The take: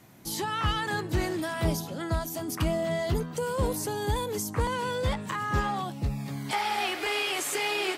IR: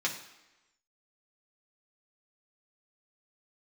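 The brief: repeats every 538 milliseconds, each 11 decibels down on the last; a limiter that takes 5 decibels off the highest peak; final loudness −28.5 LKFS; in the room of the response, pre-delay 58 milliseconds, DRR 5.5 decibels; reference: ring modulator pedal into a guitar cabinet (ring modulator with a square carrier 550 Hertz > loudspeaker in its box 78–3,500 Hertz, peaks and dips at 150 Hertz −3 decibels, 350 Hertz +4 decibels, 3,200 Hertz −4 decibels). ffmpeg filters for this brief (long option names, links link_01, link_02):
-filter_complex "[0:a]alimiter=limit=-21dB:level=0:latency=1,aecho=1:1:538|1076|1614:0.282|0.0789|0.0221,asplit=2[link_01][link_02];[1:a]atrim=start_sample=2205,adelay=58[link_03];[link_02][link_03]afir=irnorm=-1:irlink=0,volume=-12dB[link_04];[link_01][link_04]amix=inputs=2:normalize=0,aeval=exprs='val(0)*sgn(sin(2*PI*550*n/s))':channel_layout=same,highpass=78,equalizer=frequency=150:width_type=q:width=4:gain=-3,equalizer=frequency=350:width_type=q:width=4:gain=4,equalizer=frequency=3200:width_type=q:width=4:gain=-4,lowpass=frequency=3500:width=0.5412,lowpass=frequency=3500:width=1.3066,volume=1.5dB"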